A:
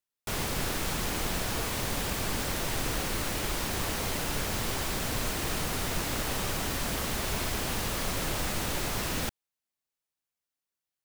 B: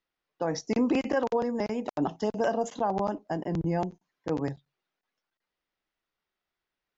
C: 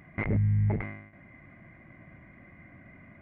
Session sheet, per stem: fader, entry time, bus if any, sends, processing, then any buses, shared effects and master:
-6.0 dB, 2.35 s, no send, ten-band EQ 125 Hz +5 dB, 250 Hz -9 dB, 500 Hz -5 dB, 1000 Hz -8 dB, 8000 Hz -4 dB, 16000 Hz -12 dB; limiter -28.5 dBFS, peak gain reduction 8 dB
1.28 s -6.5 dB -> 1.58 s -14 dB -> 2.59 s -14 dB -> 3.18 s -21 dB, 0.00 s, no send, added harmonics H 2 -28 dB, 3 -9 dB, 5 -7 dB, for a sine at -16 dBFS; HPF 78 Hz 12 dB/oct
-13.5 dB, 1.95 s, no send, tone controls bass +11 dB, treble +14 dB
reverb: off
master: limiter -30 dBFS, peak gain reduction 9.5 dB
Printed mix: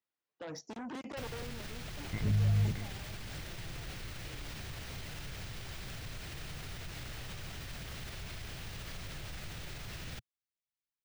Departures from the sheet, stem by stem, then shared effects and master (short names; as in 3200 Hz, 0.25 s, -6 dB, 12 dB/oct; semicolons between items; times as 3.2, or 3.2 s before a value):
stem A: entry 2.35 s -> 0.90 s; stem B -6.5 dB -> -16.0 dB; master: missing limiter -30 dBFS, peak gain reduction 9.5 dB